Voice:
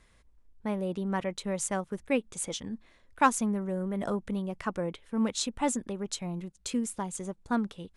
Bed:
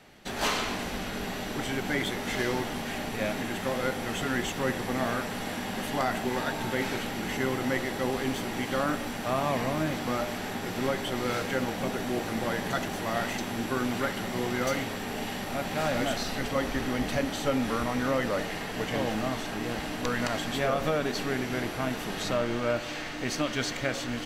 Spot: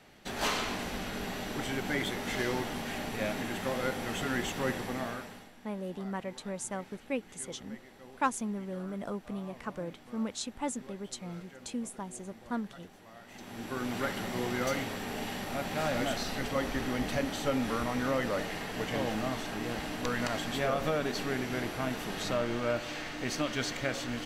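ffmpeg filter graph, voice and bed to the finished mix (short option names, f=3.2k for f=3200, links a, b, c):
-filter_complex "[0:a]adelay=5000,volume=-6dB[a];[1:a]volume=16.5dB,afade=t=out:st=4.69:d=0.82:silence=0.105925,afade=t=in:st=13.26:d=0.83:silence=0.105925[b];[a][b]amix=inputs=2:normalize=0"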